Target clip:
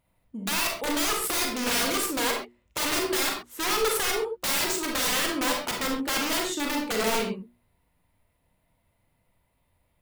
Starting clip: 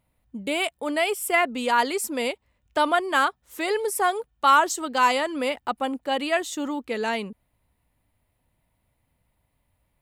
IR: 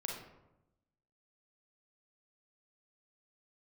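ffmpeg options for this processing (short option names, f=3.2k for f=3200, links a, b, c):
-filter_complex "[0:a]aeval=exprs='(mod(12.6*val(0)+1,2)-1)/12.6':c=same,bandreject=f=60:t=h:w=6,bandreject=f=120:t=h:w=6,bandreject=f=180:t=h:w=6,bandreject=f=240:t=h:w=6,bandreject=f=300:t=h:w=6,bandreject=f=360:t=h:w=6[a];[1:a]atrim=start_sample=2205,atrim=end_sample=6174[b];[a][b]afir=irnorm=-1:irlink=0,volume=2dB"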